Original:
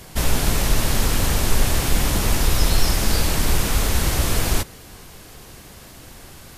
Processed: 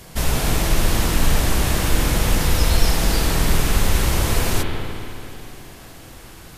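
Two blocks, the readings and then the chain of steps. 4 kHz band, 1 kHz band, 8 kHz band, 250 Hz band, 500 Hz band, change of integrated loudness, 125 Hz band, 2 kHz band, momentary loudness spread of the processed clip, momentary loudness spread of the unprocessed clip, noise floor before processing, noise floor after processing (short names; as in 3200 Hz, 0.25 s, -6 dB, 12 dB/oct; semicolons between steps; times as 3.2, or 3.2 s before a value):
0.0 dB, +1.5 dB, -1.0 dB, +2.0 dB, +2.0 dB, +0.5 dB, +1.5 dB, +1.5 dB, 16 LU, 2 LU, -43 dBFS, -41 dBFS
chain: spring tank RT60 2.8 s, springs 48/54 ms, chirp 40 ms, DRR 1 dB; gain -1 dB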